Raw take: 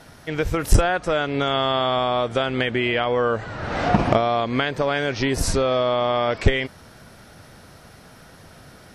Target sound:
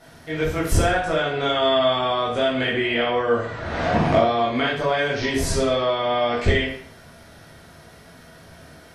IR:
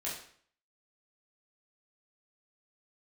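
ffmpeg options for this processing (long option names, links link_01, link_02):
-filter_complex "[1:a]atrim=start_sample=2205[link_01];[0:a][link_01]afir=irnorm=-1:irlink=0,volume=-2dB"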